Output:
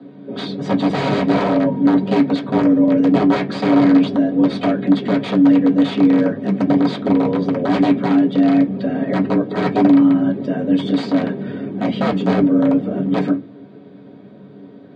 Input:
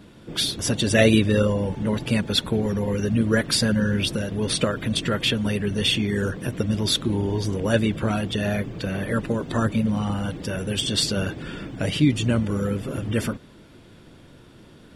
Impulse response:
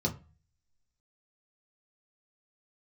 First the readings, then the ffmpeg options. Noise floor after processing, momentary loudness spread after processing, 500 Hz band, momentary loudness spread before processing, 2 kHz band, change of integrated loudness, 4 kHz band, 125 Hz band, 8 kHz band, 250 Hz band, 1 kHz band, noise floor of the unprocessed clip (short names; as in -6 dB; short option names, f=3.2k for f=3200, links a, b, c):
-41 dBFS, 8 LU, +5.5 dB, 8 LU, -0.5 dB, +7.0 dB, -7.5 dB, -0.5 dB, under -15 dB, +10.5 dB, +10.5 dB, -49 dBFS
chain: -filter_complex "[0:a]aeval=exprs='(mod(5.96*val(0)+1,2)-1)/5.96':c=same,lowpass=f=4.1k:w=0.5412,lowpass=f=4.1k:w=1.3066,afreqshift=71[a];[1:a]atrim=start_sample=2205,asetrate=79380,aresample=44100[b];[a][b]afir=irnorm=-1:irlink=0,volume=-2.5dB"